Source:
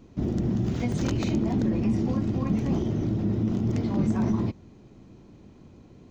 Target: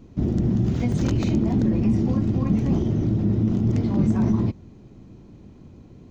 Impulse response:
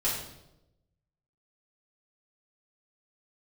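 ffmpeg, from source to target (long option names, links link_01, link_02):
-af "lowshelf=frequency=290:gain=6.5"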